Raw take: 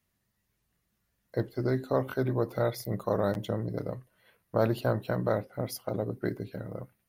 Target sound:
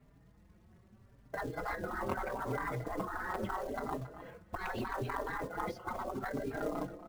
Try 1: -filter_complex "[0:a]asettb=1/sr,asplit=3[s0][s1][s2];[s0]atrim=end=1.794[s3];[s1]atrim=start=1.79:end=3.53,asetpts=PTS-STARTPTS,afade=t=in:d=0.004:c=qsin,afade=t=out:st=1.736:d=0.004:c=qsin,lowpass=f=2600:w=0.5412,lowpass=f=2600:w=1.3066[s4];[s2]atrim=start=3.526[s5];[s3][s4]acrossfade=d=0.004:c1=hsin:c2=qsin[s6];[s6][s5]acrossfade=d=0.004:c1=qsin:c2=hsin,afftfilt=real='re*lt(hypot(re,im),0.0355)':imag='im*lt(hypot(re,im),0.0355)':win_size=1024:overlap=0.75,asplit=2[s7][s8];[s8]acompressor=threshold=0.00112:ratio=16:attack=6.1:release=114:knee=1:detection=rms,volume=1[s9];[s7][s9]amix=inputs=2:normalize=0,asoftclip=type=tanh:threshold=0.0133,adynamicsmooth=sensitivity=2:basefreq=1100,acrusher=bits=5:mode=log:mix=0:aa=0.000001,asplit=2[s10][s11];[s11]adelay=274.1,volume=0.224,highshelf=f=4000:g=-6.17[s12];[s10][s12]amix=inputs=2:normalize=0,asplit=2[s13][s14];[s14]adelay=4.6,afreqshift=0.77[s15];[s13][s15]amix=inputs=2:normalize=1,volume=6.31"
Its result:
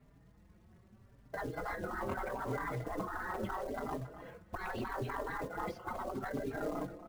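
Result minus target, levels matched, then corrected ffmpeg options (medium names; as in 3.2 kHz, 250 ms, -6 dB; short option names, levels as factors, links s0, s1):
saturation: distortion +14 dB
-filter_complex "[0:a]asettb=1/sr,asplit=3[s0][s1][s2];[s0]atrim=end=1.794[s3];[s1]atrim=start=1.79:end=3.53,asetpts=PTS-STARTPTS,afade=t=in:d=0.004:c=qsin,afade=t=out:st=1.736:d=0.004:c=qsin,lowpass=f=2600:w=0.5412,lowpass=f=2600:w=1.3066[s4];[s2]atrim=start=3.526[s5];[s3][s4]acrossfade=d=0.004:c1=hsin:c2=qsin[s6];[s6][s5]acrossfade=d=0.004:c1=qsin:c2=hsin,afftfilt=real='re*lt(hypot(re,im),0.0355)':imag='im*lt(hypot(re,im),0.0355)':win_size=1024:overlap=0.75,asplit=2[s7][s8];[s8]acompressor=threshold=0.00112:ratio=16:attack=6.1:release=114:knee=1:detection=rms,volume=1[s9];[s7][s9]amix=inputs=2:normalize=0,asoftclip=type=tanh:threshold=0.0422,adynamicsmooth=sensitivity=2:basefreq=1100,acrusher=bits=5:mode=log:mix=0:aa=0.000001,asplit=2[s10][s11];[s11]adelay=274.1,volume=0.224,highshelf=f=4000:g=-6.17[s12];[s10][s12]amix=inputs=2:normalize=0,asplit=2[s13][s14];[s14]adelay=4.6,afreqshift=0.77[s15];[s13][s15]amix=inputs=2:normalize=1,volume=6.31"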